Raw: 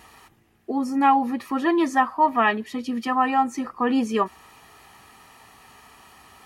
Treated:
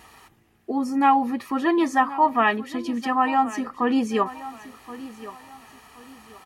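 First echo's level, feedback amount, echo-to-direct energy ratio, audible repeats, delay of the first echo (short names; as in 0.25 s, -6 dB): -16.0 dB, 31%, -15.5 dB, 2, 1.075 s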